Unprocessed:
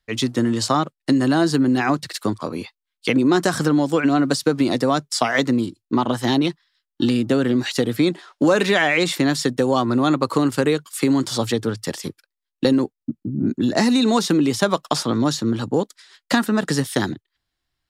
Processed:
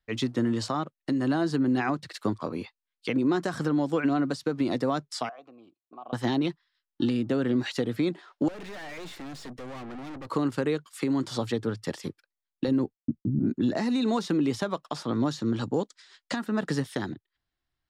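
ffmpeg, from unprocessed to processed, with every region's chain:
-filter_complex "[0:a]asettb=1/sr,asplit=3[a][b][c];[a]atrim=end=5.294[d];[b]atrim=start=5.29:end=6.13,asetpts=PTS-STARTPTS,afade=t=in:d=0.004:c=qsin,afade=t=out:st=0.836:d=0.004:c=qsin,acompressor=threshold=-22dB:ratio=3:attack=3.2:release=140:knee=1:detection=peak,asplit=3[e][f][g];[e]bandpass=f=730:t=q:w=8,volume=0dB[h];[f]bandpass=f=1.09k:t=q:w=8,volume=-6dB[i];[g]bandpass=f=2.44k:t=q:w=8,volume=-9dB[j];[h][i][j]amix=inputs=3:normalize=0[k];[c]atrim=start=6.126[l];[d][k]acrossfade=d=0.004:c1=hsin:c2=qsin[m];[m][l]acrossfade=d=0.004:c1=qsin:c2=hsin,asettb=1/sr,asplit=3[n][o][p];[n]atrim=end=8.484[q];[o]atrim=start=8.48:end=10.3,asetpts=PTS-STARTPTS,afade=t=in:d=0.004:c=qsin,afade=t=out:st=1.816:d=0.004:c=qsin,highpass=120,aeval=exprs='(tanh(44.7*val(0)+0.45)-tanh(0.45))/44.7':c=same[r];[p]atrim=start=10.296[s];[q][r]acrossfade=d=0.004:c1=hsin:c2=qsin[t];[t][s]acrossfade=d=0.004:c1=qsin:c2=hsin,asettb=1/sr,asplit=3[u][v][w];[u]atrim=end=12.684[x];[v]atrim=start=12.68:end=13.39,asetpts=PTS-STARTPTS,afade=t=in:d=0.004:c=qsin,afade=t=out:st=0.706:d=0.004:c=qsin,agate=range=-33dB:threshold=-44dB:ratio=3:release=100:detection=peak,lowshelf=f=200:g=8.5[y];[w]atrim=start=13.386[z];[x][y]acrossfade=d=0.004:c1=hsin:c2=qsin[aa];[aa][z]acrossfade=d=0.004:c1=qsin:c2=hsin,asettb=1/sr,asplit=3[ab][ac][ad];[ab]atrim=end=15.404[ae];[ac]atrim=start=15.4:end=16.36,asetpts=PTS-STARTPTS,afade=t=in:d=0.004:c=qsin,afade=t=out:st=0.956:d=0.004:c=qsin,lowpass=f=8.2k:w=0.5412,lowpass=f=8.2k:w=1.3066,aemphasis=mode=production:type=50kf[af];[ad]atrim=start=16.356[ag];[ae][af]acrossfade=d=0.004:c1=hsin:c2=qsin[ah];[ah][ag]acrossfade=d=0.004:c1=qsin:c2=hsin,alimiter=limit=-11dB:level=0:latency=1:release=360,lowpass=f=2.9k:p=1,volume=-5dB"

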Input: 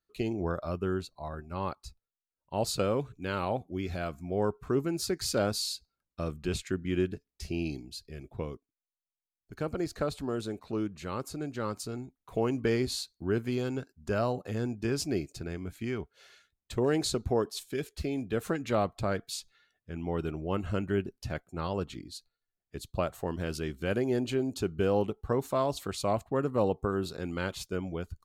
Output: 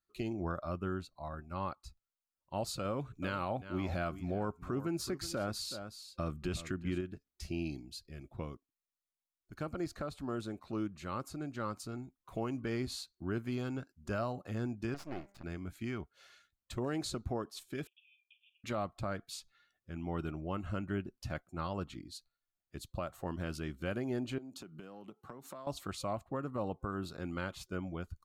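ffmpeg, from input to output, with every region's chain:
-filter_complex "[0:a]asettb=1/sr,asplit=3[a][b][c];[a]atrim=end=2.854[d];[b]atrim=start=2.85:end=7.01,asetpts=PTS-STARTPTS,afade=t=in:d=0.004:c=qsin,afade=t=out:st=4.156:d=0.004:c=qsin,acontrast=28,aecho=1:1:374:0.188,atrim=end_sample=183456[e];[c]atrim=start=7.006[f];[d][e]acrossfade=d=0.004:c1=hsin:c2=qsin[g];[g][f]acrossfade=d=0.004:c1=qsin:c2=hsin,asettb=1/sr,asplit=3[h][i][j];[h]atrim=end=14.944[k];[i]atrim=start=14.94:end=15.44,asetpts=PTS-STARTPTS,afade=t=in:d=0.004:c=qsin,afade=t=out:st=0.496:d=0.004:c=qsin,aeval=exprs='max(val(0),0)':c=same,bass=f=250:g=-6,treble=f=4k:g=-10,bandreject=f=199.2:t=h:w=4,bandreject=f=398.4:t=h:w=4,bandreject=f=597.6:t=h:w=4,bandreject=f=796.8:t=h:w=4,bandreject=f=996:t=h:w=4,bandreject=f=1.1952k:t=h:w=4,bandreject=f=1.3944k:t=h:w=4,bandreject=f=1.5936k:t=h:w=4,bandreject=f=1.7928k:t=h:w=4,bandreject=f=1.992k:t=h:w=4,bandreject=f=2.1912k:t=h:w=4,bandreject=f=2.3904k:t=h:w=4[l];[j]atrim=start=15.436[m];[k][l]acrossfade=d=0.004:c1=hsin:c2=qsin[n];[n][m]acrossfade=d=0.004:c1=qsin:c2=hsin,asettb=1/sr,asplit=3[o][p][q];[o]atrim=end=17.874[r];[p]atrim=start=17.87:end=18.64,asetpts=PTS-STARTPTS,afade=t=in:d=0.004:c=qsin,afade=t=out:st=0.766:d=0.004:c=qsin,acompressor=threshold=-42dB:ratio=5:attack=3.2:release=140:knee=1:detection=peak,asuperpass=centerf=2900:order=20:qfactor=2.5,asplit=2[s][t];[t]adelay=42,volume=-12.5dB[u];[s][u]amix=inputs=2:normalize=0,atrim=end_sample=33957[v];[q]atrim=start=18.636[w];[r][v]acrossfade=d=0.004:c1=hsin:c2=qsin[x];[x][w]acrossfade=d=0.004:c1=qsin:c2=hsin,asettb=1/sr,asplit=3[y][z][aa];[y]atrim=end=24.384[ab];[z]atrim=start=24.38:end=25.67,asetpts=PTS-STARTPTS,afade=t=in:d=0.004:c=qsin,afade=t=out:st=1.286:d=0.004:c=qsin,highpass=f=140:w=0.5412,highpass=f=140:w=1.3066,acompressor=threshold=-39dB:ratio=10:attack=3.2:release=140:knee=1:detection=peak[ac];[aa]atrim=start=25.666[ad];[ab][ac]acrossfade=d=0.004:c1=hsin:c2=qsin[ae];[ae][ad]acrossfade=d=0.004:c1=qsin:c2=hsin,superequalizer=7b=0.501:10b=1.41,alimiter=limit=-22dB:level=0:latency=1:release=265,adynamicequalizer=threshold=0.00251:dfrequency=2900:dqfactor=0.7:tfrequency=2900:tqfactor=0.7:attack=5:release=100:ratio=0.375:range=2.5:mode=cutabove:tftype=highshelf,volume=-4dB"

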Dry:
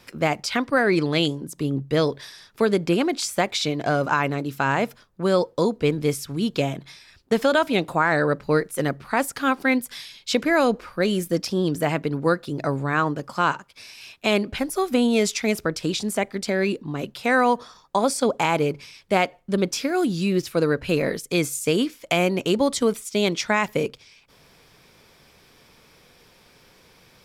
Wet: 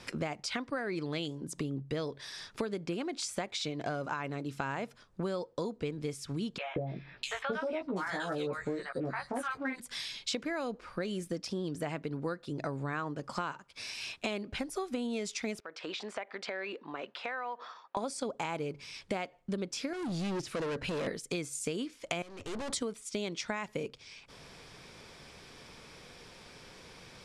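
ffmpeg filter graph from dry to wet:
-filter_complex "[0:a]asettb=1/sr,asplit=3[a][b][c];[a]atrim=end=6.584[d];[b]atrim=start=6.58:end=9.8,asetpts=PTS-STARTPTS,afade=t=in:d=0.004:c=qsin,afade=t=out:st=3.216:d=0.004:c=qsin,asplit=2[e][f];[f]adelay=16,volume=-3dB[g];[e][g]amix=inputs=2:normalize=0,atrim=end_sample=142002,acrossover=split=820|2900[h][i][j];[h]adelay=180[k];[j]adelay=650[l];[k][i][l]amix=inputs=3:normalize=0,atrim=end_sample=142002[m];[c]atrim=start=9.796[n];[d][m]acrossfade=d=0.004:c1=hsin:c2=qsin[o];[o][n]acrossfade=d=0.004:c1=qsin:c2=hsin,asettb=1/sr,asplit=3[p][q][r];[p]atrim=end=15.604[s];[q]atrim=start=15.6:end=17.97,asetpts=PTS-STARTPTS,afade=t=in:d=0.004:c=qsin,afade=t=out:st=2.366:d=0.004:c=qsin,highpass=670,lowpass=2.5k,acompressor=threshold=-39dB:ratio=2:attack=3.2:release=140:knee=1:detection=peak[t];[r]atrim=start=17.966[u];[s][t]acrossfade=d=0.004:c1=hsin:c2=qsin[v];[v][u]acrossfade=d=0.004:c1=qsin:c2=hsin,asettb=1/sr,asplit=3[w][x][y];[w]atrim=end=19.934[z];[x]atrim=start=19.93:end=21.07,asetpts=PTS-STARTPTS,afade=t=in:d=0.004:c=qsin,afade=t=out:st=1.136:d=0.004:c=qsin,deesser=0.85,equalizer=f=63:w=1.9:g=-12.5,volume=27.5dB,asoftclip=hard,volume=-27.5dB[aa];[y]atrim=start=21.066[ab];[z][aa]acrossfade=d=0.004:c1=hsin:c2=qsin[ac];[ac][ab]acrossfade=d=0.004:c1=qsin:c2=hsin,asettb=1/sr,asplit=3[ad][ae][af];[ad]atrim=end=22.224[ag];[ae]atrim=start=22.22:end=22.73,asetpts=PTS-STARTPTS,afade=t=in:d=0.004:c=qsin,afade=t=out:st=0.506:d=0.004:c=qsin,lowshelf=f=120:t=q:w=3:g=7.5,aeval=exprs='(tanh(70.8*val(0)+0.7)-tanh(0.7))/70.8':c=same[ah];[af]atrim=start=22.726[ai];[ag][ah]acrossfade=d=0.004:c1=hsin:c2=qsin[aj];[aj][ai]acrossfade=d=0.004:c1=qsin:c2=hsin,lowpass=f=9.8k:w=0.5412,lowpass=f=9.8k:w=1.3066,acompressor=threshold=-36dB:ratio=6,volume=2dB"

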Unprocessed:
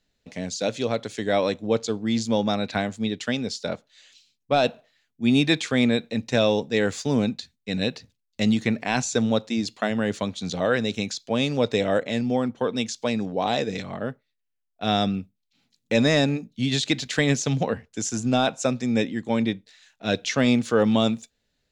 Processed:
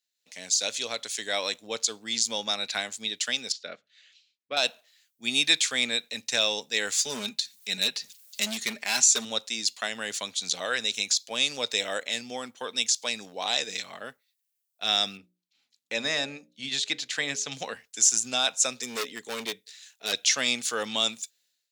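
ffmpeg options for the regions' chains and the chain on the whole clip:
-filter_complex "[0:a]asettb=1/sr,asplit=3[a][b][c];[a]atrim=end=3.524[d];[b]atrim=start=3.52:end=4.57,asetpts=PTS-STARTPTS,afade=t=in:d=0.004:c=qsin,afade=t=out:st=1.046:d=0.004:c=qsin,highpass=130,lowpass=2.2k,equalizer=f=900:t=o:w=0.41:g=-14.5,bandreject=f=50:t=h:w=6,bandreject=f=100:t=h:w=6,bandreject=f=150:t=h:w=6,bandreject=f=200:t=h:w=6[e];[c]atrim=start=4.566[f];[d][e]acrossfade=d=0.004:c1=hsin:c2=qsin[g];[g][f]acrossfade=d=0.004:c1=qsin:c2=hsin,asettb=1/sr,asplit=3[h][i][j];[h]atrim=end=6.994[k];[i]atrim=start=6.99:end=9.25,asetpts=PTS-STARTPTS,afade=t=in:d=0.004:c=qsin,afade=t=out:st=2.256:d=0.004:c=qsin,aecho=1:1:4.9:0.61,atrim=end_sample=99666,acompressor=mode=upward:threshold=-30dB:ratio=2.5:attack=3.2:release=140:knee=2.83:detection=peak,asoftclip=type=hard:threshold=-15.5dB[l];[j]atrim=start=9.246[m];[k][l]acrossfade=d=0.004:c1=hsin:c2=qsin[n];[n][m]acrossfade=d=0.004:c1=qsin:c2=hsin,asettb=1/sr,asplit=3[o][p][q];[o]atrim=end=15.174[r];[p]atrim=start=15.17:end=17.52,asetpts=PTS-STARTPTS,afade=t=in:d=0.004:c=qsin,afade=t=out:st=2.346:d=0.004:c=qsin,lowpass=f=1.8k:p=1,bandreject=f=60:t=h:w=6,bandreject=f=120:t=h:w=6,bandreject=f=180:t=h:w=6,bandreject=f=240:t=h:w=6,bandreject=f=300:t=h:w=6,bandreject=f=360:t=h:w=6,bandreject=f=420:t=h:w=6,bandreject=f=480:t=h:w=6,bandreject=f=540:t=h:w=6,bandreject=f=600:t=h:w=6[s];[q]atrim=start=17.516[t];[r][s]acrossfade=d=0.004:c1=hsin:c2=qsin[u];[u][t]acrossfade=d=0.004:c1=qsin:c2=hsin,asettb=1/sr,asplit=3[v][w][x];[v]atrim=end=18.764[y];[w]atrim=start=18.76:end=20.13,asetpts=PTS-STARTPTS,afade=t=in:d=0.004:c=qsin,afade=t=out:st=1.366:d=0.004:c=qsin,equalizer=f=430:w=5.1:g=13,asoftclip=type=hard:threshold=-18.5dB[z];[x]atrim=start=20.126[aa];[y][z]acrossfade=d=0.004:c1=hsin:c2=qsin[ab];[ab][aa]acrossfade=d=0.004:c1=qsin:c2=hsin,aderivative,dynaudnorm=f=130:g=5:m=14dB,volume=-3dB"

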